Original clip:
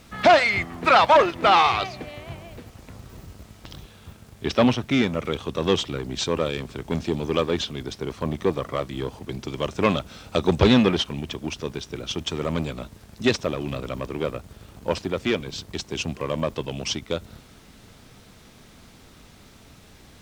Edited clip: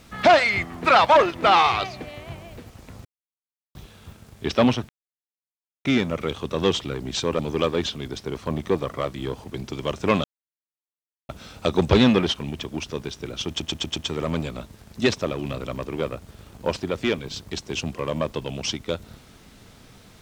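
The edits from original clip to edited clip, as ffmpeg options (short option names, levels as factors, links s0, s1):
-filter_complex "[0:a]asplit=10[s0][s1][s2][s3][s4][s5][s6][s7][s8][s9];[s0]atrim=end=3.05,asetpts=PTS-STARTPTS,afade=t=out:st=3.046:d=0.004:c=hsin[s10];[s1]atrim=start=3.05:end=3.75,asetpts=PTS-STARTPTS,volume=0[s11];[s2]atrim=start=3.75:end=4.89,asetpts=PTS-STARTPTS,afade=t=in:d=0.004:c=hsin,afade=t=out:st=1.136:d=0.004:c=hsin,apad=pad_dur=0.96[s12];[s3]atrim=start=4.89:end=6.432,asetpts=PTS-STARTPTS,afade=t=in:d=0.004:c=hsin[s13];[s4]atrim=start=7.138:end=9.99,asetpts=PTS-STARTPTS,afade=t=out:st=2.848:d=0.004:c=hsin,apad=pad_dur=1.05[s14];[s5]atrim=start=9.99:end=12.302,asetpts=PTS-STARTPTS,afade=t=in:d=0.004:c=hsin[s15];[s6]atrim=start=12.178:end=12.302[s16];[s7]atrim=start=12.178:end=12.302[s17];[s8]atrim=start=12.178:end=12.302[s18];[s9]atrim=start=12.178[s19];[s10][s11][s12][s13]concat=n=4:v=0:a=1[s20];[s14][s15]concat=n=2:v=0:a=1[s21];[s20][s21]acrossfade=d=0.004:c1=hsin:c2=hsin[s22];[s22][s16]acrossfade=d=0.004:c1=hsin:c2=hsin[s23];[s23][s17]acrossfade=d=0.004:c1=hsin:c2=hsin[s24];[s24][s18]acrossfade=d=0.004:c1=hsin:c2=hsin[s25];[s25][s19]acrossfade=d=0.004:c1=hsin:c2=hsin"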